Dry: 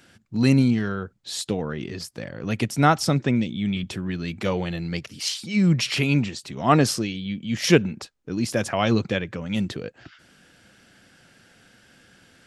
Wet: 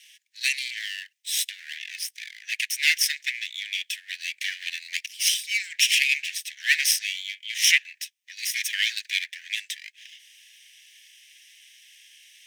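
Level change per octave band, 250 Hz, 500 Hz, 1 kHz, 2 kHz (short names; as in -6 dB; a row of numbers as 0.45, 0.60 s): under -40 dB, under -40 dB, under -35 dB, +6.0 dB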